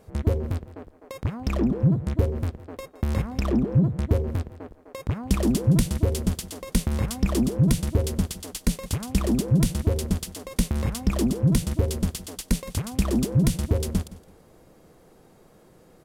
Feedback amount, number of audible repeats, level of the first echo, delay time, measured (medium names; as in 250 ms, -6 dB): 25%, 2, -18.5 dB, 167 ms